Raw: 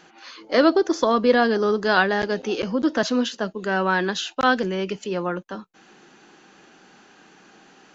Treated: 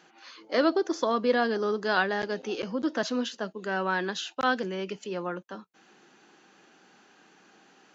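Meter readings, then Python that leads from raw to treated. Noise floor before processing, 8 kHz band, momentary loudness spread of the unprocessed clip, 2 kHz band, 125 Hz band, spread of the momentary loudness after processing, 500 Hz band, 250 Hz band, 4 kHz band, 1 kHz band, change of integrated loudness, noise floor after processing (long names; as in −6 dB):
−53 dBFS, can't be measured, 10 LU, −6.5 dB, −8.5 dB, 10 LU, −7.0 dB, −8.0 dB, −6.5 dB, −6.5 dB, −7.0 dB, −60 dBFS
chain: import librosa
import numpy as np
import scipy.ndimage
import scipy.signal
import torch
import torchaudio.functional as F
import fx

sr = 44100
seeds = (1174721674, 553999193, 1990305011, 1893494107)

y = fx.highpass(x, sr, hz=150.0, slope=6)
y = y * 10.0 ** (-6.5 / 20.0)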